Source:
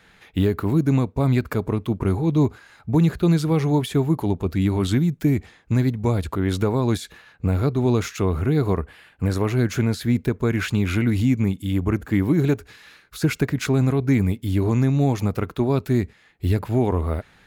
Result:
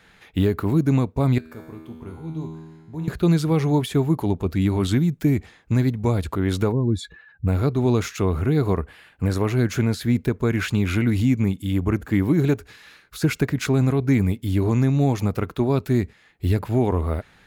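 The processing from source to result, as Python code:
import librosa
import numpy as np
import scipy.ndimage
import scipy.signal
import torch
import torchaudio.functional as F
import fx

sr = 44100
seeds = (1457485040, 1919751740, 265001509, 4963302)

y = fx.comb_fb(x, sr, f0_hz=80.0, decay_s=1.4, harmonics='all', damping=0.0, mix_pct=90, at=(1.38, 3.08))
y = fx.spec_expand(y, sr, power=2.0, at=(6.71, 7.46), fade=0.02)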